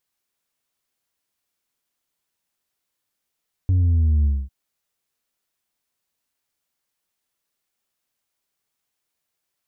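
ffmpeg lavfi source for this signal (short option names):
-f lavfi -i "aevalsrc='0.178*clip((0.8-t)/0.24,0,1)*tanh(1.41*sin(2*PI*94*0.8/log(65/94)*(exp(log(65/94)*t/0.8)-1)))/tanh(1.41)':d=0.8:s=44100"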